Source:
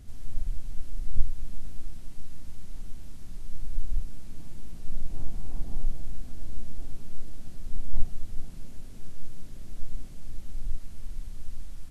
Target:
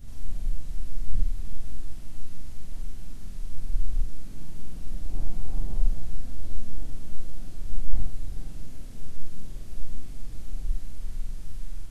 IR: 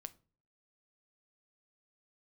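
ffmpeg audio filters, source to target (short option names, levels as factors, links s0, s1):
-af "afftfilt=real='re':imag='-im':win_size=4096:overlap=0.75,volume=2.24"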